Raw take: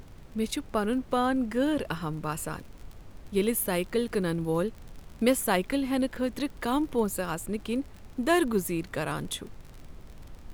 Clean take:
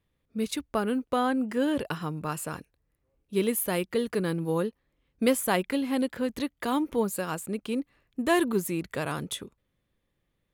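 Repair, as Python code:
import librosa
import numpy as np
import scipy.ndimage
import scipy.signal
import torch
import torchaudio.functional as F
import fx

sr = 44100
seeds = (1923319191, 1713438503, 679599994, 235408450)

y = fx.fix_declick_ar(x, sr, threshold=6.5)
y = fx.noise_reduce(y, sr, print_start_s=2.65, print_end_s=3.15, reduce_db=29.0)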